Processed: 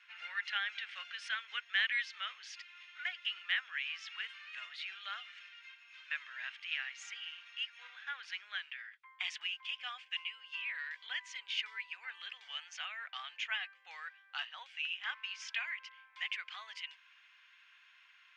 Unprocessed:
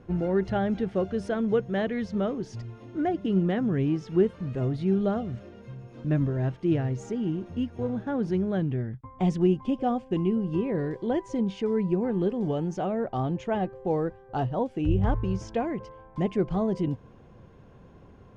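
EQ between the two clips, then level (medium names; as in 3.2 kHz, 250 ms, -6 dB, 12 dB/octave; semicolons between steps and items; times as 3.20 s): high-pass 1.5 kHz 24 dB/octave; resonant low-pass 2.6 kHz, resonance Q 1.7; differentiator; +16.0 dB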